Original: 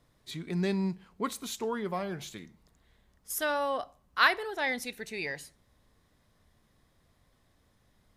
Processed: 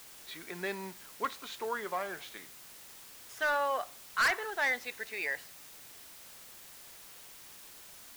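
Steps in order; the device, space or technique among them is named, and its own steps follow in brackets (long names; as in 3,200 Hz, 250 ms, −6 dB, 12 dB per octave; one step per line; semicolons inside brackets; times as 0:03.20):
drive-through speaker (band-pass filter 510–3,400 Hz; parametric band 1,600 Hz +5 dB; hard clipping −24 dBFS, distortion −5 dB; white noise bed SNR 14 dB)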